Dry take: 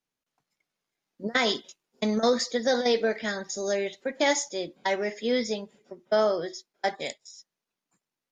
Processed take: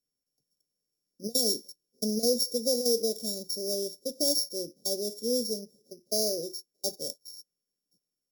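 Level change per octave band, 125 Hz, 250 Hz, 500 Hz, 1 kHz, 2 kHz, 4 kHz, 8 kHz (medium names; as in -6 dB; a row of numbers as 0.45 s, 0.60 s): no reading, -4.0 dB, -5.0 dB, -21.0 dB, under -40 dB, +1.5 dB, +4.5 dB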